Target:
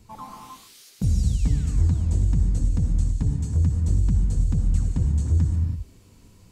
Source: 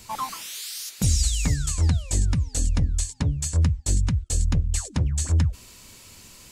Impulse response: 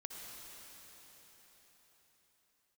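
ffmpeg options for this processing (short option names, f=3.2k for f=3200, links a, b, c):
-filter_complex "[0:a]tiltshelf=f=790:g=9,bandreject=f=580:w=12[a];[1:a]atrim=start_sample=2205,afade=t=out:st=0.39:d=0.01,atrim=end_sample=17640[b];[a][b]afir=irnorm=-1:irlink=0,volume=-3dB"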